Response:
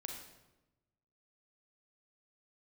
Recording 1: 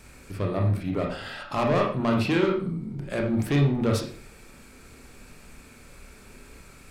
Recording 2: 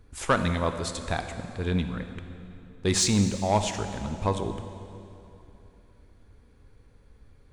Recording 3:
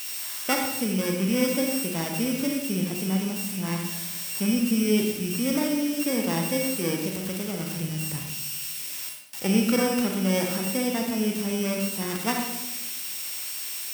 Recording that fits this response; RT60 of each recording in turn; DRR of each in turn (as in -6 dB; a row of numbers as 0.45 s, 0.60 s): 3; 0.45 s, 3.0 s, 1.0 s; 0.0 dB, 7.5 dB, 1.5 dB